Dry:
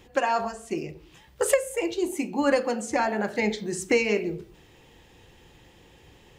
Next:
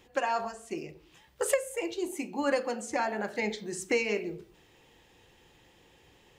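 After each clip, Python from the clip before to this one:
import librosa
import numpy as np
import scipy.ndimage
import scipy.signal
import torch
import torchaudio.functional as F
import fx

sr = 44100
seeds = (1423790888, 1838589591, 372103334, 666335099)

y = fx.low_shelf(x, sr, hz=230.0, db=-6.5)
y = F.gain(torch.from_numpy(y), -4.5).numpy()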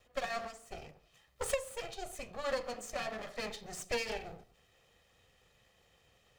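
y = fx.lower_of_two(x, sr, delay_ms=1.6)
y = fx.dynamic_eq(y, sr, hz=4700.0, q=0.8, threshold_db=-52.0, ratio=4.0, max_db=4)
y = F.gain(torch.from_numpy(y), -6.0).numpy()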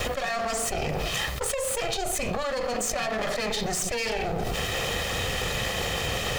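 y = fx.env_flatten(x, sr, amount_pct=100)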